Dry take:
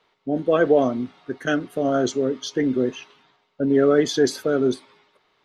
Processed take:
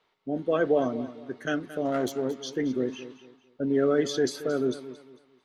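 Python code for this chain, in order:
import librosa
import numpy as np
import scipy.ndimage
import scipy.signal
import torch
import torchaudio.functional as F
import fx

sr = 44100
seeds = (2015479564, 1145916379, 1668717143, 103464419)

y = fx.self_delay(x, sr, depth_ms=0.11, at=(1.85, 2.43))
y = fx.echo_feedback(y, sr, ms=225, feedback_pct=30, wet_db=-14.5)
y = y * librosa.db_to_amplitude(-6.5)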